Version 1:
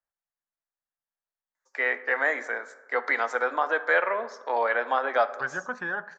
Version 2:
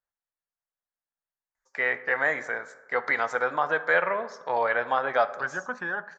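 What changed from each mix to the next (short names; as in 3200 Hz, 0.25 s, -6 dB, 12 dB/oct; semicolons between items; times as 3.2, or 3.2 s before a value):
first voice: remove steep high-pass 230 Hz 48 dB/oct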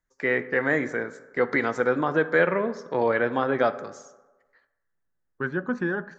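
first voice: entry -1.55 s; master: add resonant low shelf 480 Hz +13 dB, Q 1.5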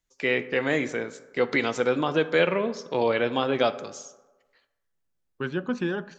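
master: add resonant high shelf 2200 Hz +7 dB, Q 3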